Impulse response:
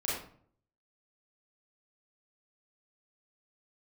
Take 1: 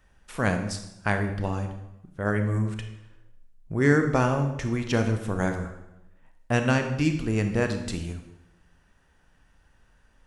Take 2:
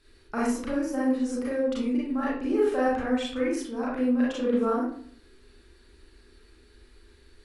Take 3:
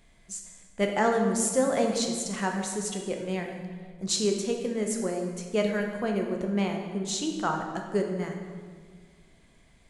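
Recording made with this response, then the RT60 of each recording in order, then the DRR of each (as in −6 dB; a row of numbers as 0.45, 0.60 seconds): 2; 0.85, 0.55, 1.8 seconds; 5.5, −7.5, 2.0 decibels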